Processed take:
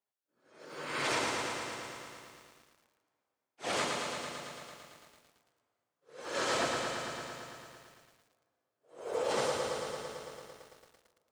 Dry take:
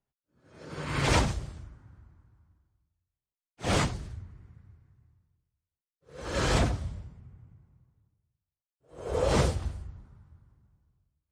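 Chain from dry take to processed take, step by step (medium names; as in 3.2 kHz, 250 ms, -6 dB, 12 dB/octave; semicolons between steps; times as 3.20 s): high-pass 390 Hz 12 dB/octave; peak limiter -21 dBFS, peak gain reduction 6.5 dB; plate-style reverb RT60 2.7 s, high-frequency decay 0.9×, DRR 6 dB; bit-crushed delay 112 ms, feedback 80%, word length 10-bit, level -4.5 dB; trim -2.5 dB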